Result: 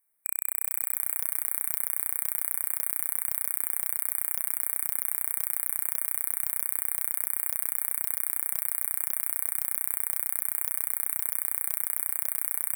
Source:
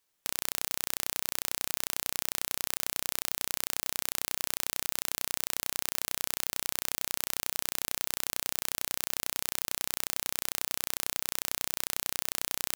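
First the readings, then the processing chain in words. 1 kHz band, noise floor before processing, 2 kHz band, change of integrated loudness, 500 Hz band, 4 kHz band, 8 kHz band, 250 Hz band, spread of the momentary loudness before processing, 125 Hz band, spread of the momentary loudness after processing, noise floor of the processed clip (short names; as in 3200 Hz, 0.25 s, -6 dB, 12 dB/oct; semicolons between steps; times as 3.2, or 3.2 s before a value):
-4.5 dB, -77 dBFS, -4.0 dB, +4.5 dB, -5.5 dB, under -40 dB, +2.5 dB, -5.5 dB, 0 LU, n/a, 0 LU, -43 dBFS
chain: brick-wall FIR band-stop 2400–8000 Hz; high shelf 3700 Hz +12 dB; on a send: thinning echo 0.232 s, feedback 52%, high-pass 500 Hz, level -9 dB; on the sum: gain -6 dB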